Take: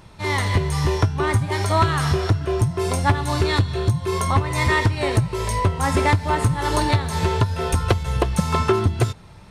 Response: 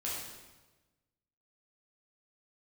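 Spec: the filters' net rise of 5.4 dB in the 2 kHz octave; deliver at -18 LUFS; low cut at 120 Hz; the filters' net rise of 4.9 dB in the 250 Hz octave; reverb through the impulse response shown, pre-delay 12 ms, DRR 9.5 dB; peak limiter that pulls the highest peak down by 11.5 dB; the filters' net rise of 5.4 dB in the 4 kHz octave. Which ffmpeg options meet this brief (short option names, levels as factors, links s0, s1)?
-filter_complex "[0:a]highpass=120,equalizer=f=250:t=o:g=8,equalizer=f=2000:t=o:g=5,equalizer=f=4000:t=o:g=5,alimiter=limit=0.224:level=0:latency=1,asplit=2[s0][s1];[1:a]atrim=start_sample=2205,adelay=12[s2];[s1][s2]afir=irnorm=-1:irlink=0,volume=0.237[s3];[s0][s3]amix=inputs=2:normalize=0,volume=1.68"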